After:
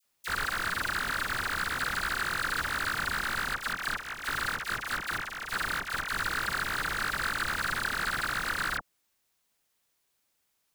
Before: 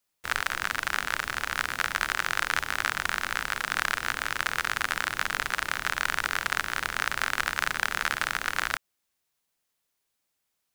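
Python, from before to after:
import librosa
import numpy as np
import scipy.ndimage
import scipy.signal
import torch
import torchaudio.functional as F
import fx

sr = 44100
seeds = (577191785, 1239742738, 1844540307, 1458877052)

y = fx.step_gate(x, sr, bpm=145, pattern='.x...xxx.x.x', floor_db=-12.0, edge_ms=4.5, at=(3.53, 6.07), fade=0.02)
y = np.clip(y, -10.0 ** (-22.0 / 20.0), 10.0 ** (-22.0 / 20.0))
y = fx.dispersion(y, sr, late='lows', ms=40.0, hz=1600.0)
y = y * 10.0 ** (3.5 / 20.0)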